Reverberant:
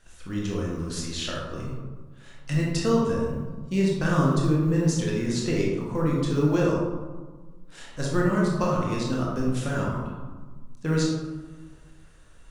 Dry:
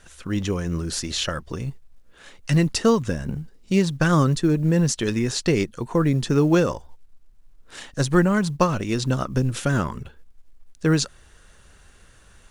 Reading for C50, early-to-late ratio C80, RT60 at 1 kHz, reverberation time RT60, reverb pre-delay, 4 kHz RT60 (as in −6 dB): 0.0 dB, 3.0 dB, 1.4 s, 1.4 s, 20 ms, 0.60 s